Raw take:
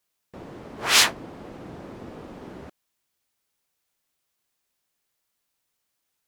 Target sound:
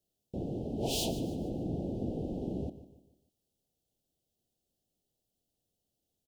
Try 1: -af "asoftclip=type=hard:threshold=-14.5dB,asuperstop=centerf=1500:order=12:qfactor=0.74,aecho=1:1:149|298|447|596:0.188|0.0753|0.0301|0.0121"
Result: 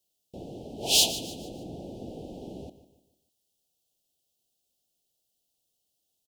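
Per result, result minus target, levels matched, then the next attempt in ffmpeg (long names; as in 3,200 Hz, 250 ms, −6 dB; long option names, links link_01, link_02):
500 Hz band −13.0 dB; hard clipping: distortion −8 dB
-af "asoftclip=type=hard:threshold=-14.5dB,asuperstop=centerf=1500:order=12:qfactor=0.74,tiltshelf=frequency=670:gain=8,aecho=1:1:149|298|447|596:0.188|0.0753|0.0301|0.0121"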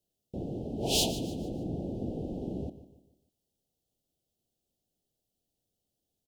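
hard clipping: distortion −8 dB
-af "asoftclip=type=hard:threshold=-24dB,asuperstop=centerf=1500:order=12:qfactor=0.74,tiltshelf=frequency=670:gain=8,aecho=1:1:149|298|447|596:0.188|0.0753|0.0301|0.0121"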